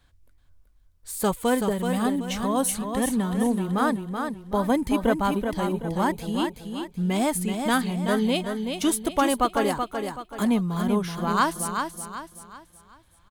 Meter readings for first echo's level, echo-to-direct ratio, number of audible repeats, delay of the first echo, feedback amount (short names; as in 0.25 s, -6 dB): -6.0 dB, -5.5 dB, 4, 0.379 s, 38%